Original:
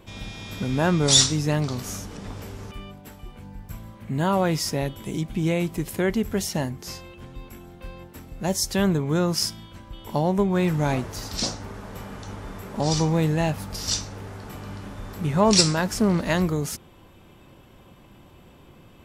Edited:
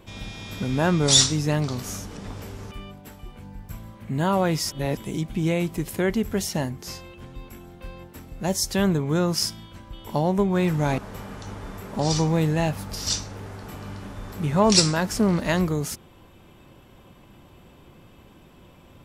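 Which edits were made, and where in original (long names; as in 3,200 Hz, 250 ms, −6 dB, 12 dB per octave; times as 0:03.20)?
0:04.71–0:04.97: reverse
0:10.98–0:11.79: remove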